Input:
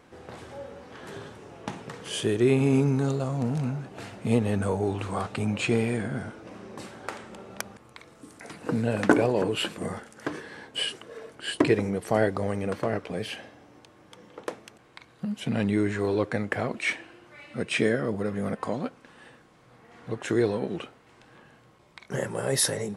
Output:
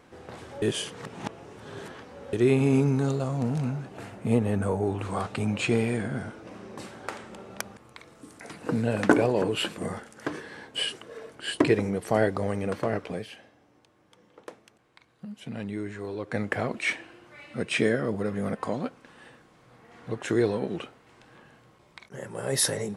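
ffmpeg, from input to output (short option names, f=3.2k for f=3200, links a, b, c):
-filter_complex "[0:a]asettb=1/sr,asplit=3[a][b][c];[a]atrim=end=3.974[d];[b]atrim=start=3.97:end=5.05,asetpts=PTS-STARTPTS,afade=t=in:d=0.004:c=qsin,afade=t=out:st=1.076:d=0.004:c=qsin,equalizer=f=4.4k:w=0.77:g=-7[e];[c]atrim=start=5.046[f];[d][e]acrossfade=d=0.004:c1=hsin:c2=qsin[g];[g][f]acrossfade=d=0.004:c1=qsin:c2=hsin,asplit=6[h][i][j][k][l][m];[h]atrim=end=0.622[n];[i]atrim=start=0.618:end=2.332,asetpts=PTS-STARTPTS,areverse[o];[j]atrim=start=2.328:end=13.26,asetpts=PTS-STARTPTS,afade=t=out:st=10.802:d=0.13:silence=0.354813[p];[k]atrim=start=13.26:end=16.25,asetpts=PTS-STARTPTS,volume=-9dB[q];[l]atrim=start=16.25:end=22.09,asetpts=PTS-STARTPTS,afade=t=in:d=0.13:silence=0.354813,afade=t=out:st=5.836:d=0.004:c=hsin:silence=0.177828[r];[m]atrim=start=22.09,asetpts=PTS-STARTPTS,afade=t=in:d=0.55:silence=0.177828[s];[n][o]acrossfade=d=0.004:c1=hsin:c2=hsin[t];[p][q][r][s]concat=n=4:v=0:a=1[u];[t][u]acrossfade=d=0.004:c1=hsin:c2=hsin"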